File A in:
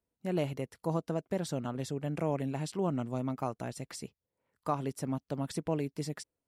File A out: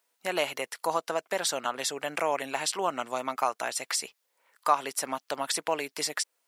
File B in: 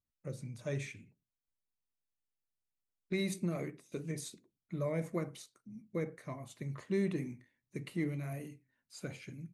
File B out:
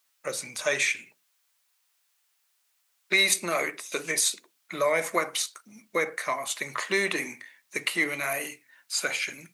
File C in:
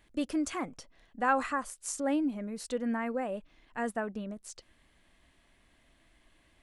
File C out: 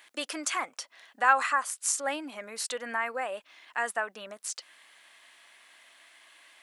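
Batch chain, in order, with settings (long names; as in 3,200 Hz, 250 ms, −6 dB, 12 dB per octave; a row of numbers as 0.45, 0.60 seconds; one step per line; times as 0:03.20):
high-pass filter 990 Hz 12 dB per octave
in parallel at −0.5 dB: downward compressor, threshold −50 dBFS
on the sum: normalise the peak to −9 dBFS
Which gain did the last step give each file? +12.5, +18.5, +7.5 decibels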